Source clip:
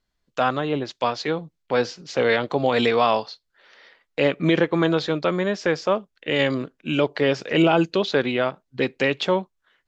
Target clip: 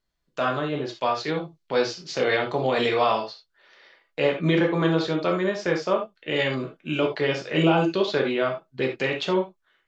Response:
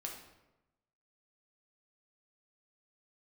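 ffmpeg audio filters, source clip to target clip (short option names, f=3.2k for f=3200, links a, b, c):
-filter_complex "[0:a]asettb=1/sr,asplit=3[a][b][c];[a]atrim=end=1.284[d];[b]atrim=start=1.28:end=2.24,asetpts=PTS-STARTPTS,afade=t=in:d=0.004:c=qsin,afade=t=out:st=0.956:d=0.004:c=qsin,equalizer=f=4.8k:w=1.1:g=5.5[e];[c]atrim=start=2.236[f];[d][e]acrossfade=d=0.004:c1=hsin:c2=qsin[g];[g][f]acrossfade=d=0.004:c1=qsin:c2=hsin[h];[1:a]atrim=start_sample=2205,atrim=end_sample=3969[i];[h][i]afir=irnorm=-1:irlink=0"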